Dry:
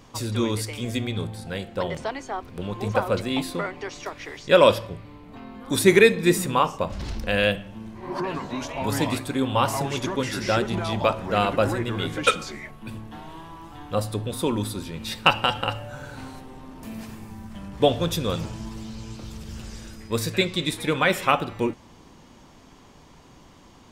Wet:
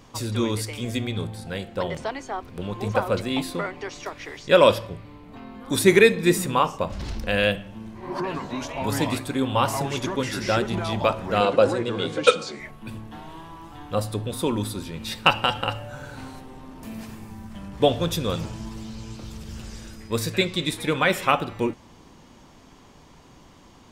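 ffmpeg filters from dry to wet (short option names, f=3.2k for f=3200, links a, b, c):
-filter_complex "[0:a]asettb=1/sr,asplit=3[a][b][c];[a]atrim=end=11.404[d];[b]atrim=start=11.4:end=12.6,asetpts=PTS-STARTPTS,afade=t=in:d=0.004:c=qsin,afade=t=out:st=1.196:d=0.004:c=qsin,highpass=130,equalizer=f=490:t=q:w=4:g=9,equalizer=f=1.9k:t=q:w=4:g=-5,equalizer=f=4.2k:t=q:w=4:g=5,lowpass=f=9.3k:w=0.5412,lowpass=f=9.3k:w=1.3066[e];[c]atrim=start=12.596[f];[d][e]acrossfade=d=0.004:c1=hsin:c2=qsin[g];[g][f]acrossfade=d=0.004:c1=qsin:c2=hsin"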